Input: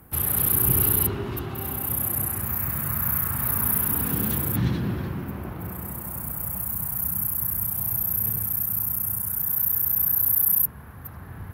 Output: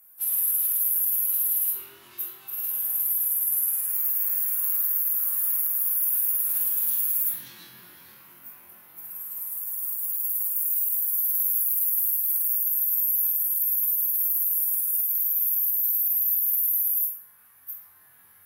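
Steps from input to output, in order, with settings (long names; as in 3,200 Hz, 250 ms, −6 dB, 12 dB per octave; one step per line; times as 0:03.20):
first difference
brickwall limiter −13.5 dBFS, peak gain reduction 9.5 dB
phase-vocoder stretch with locked phases 1.6×
on a send: flutter between parallel walls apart 3.9 metres, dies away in 0.45 s
on the sum: level −2 dB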